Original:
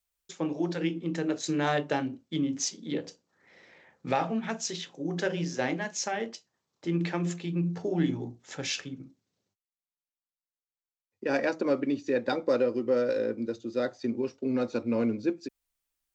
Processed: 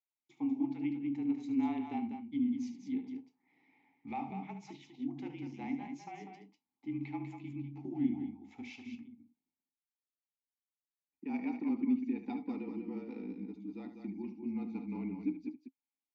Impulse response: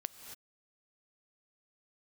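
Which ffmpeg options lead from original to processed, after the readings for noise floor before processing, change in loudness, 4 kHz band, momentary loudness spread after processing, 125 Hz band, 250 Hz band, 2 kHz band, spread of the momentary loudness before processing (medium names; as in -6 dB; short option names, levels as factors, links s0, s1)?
under -85 dBFS, -8.0 dB, under -20 dB, 14 LU, -13.0 dB, -4.0 dB, -17.0 dB, 9 LU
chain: -filter_complex "[0:a]asplit=3[s0][s1][s2];[s0]bandpass=f=300:t=q:w=8,volume=1[s3];[s1]bandpass=f=870:t=q:w=8,volume=0.501[s4];[s2]bandpass=f=2240:t=q:w=8,volume=0.355[s5];[s3][s4][s5]amix=inputs=3:normalize=0,afreqshift=-33,aecho=1:1:72.89|195.3:0.282|0.447"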